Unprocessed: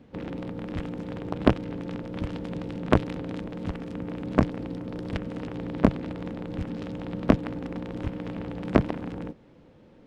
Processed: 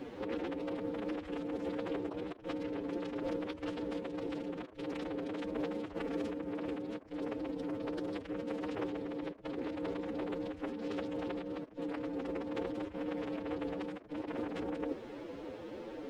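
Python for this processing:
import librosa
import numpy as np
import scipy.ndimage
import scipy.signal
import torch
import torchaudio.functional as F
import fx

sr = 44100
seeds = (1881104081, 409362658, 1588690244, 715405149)

y = fx.over_compress(x, sr, threshold_db=-41.0, ratio=-1.0)
y = fx.low_shelf_res(y, sr, hz=240.0, db=-10.0, q=1.5)
y = fx.stretch_vocoder(y, sr, factor=1.6)
y = F.gain(torch.from_numpy(y), 2.0).numpy()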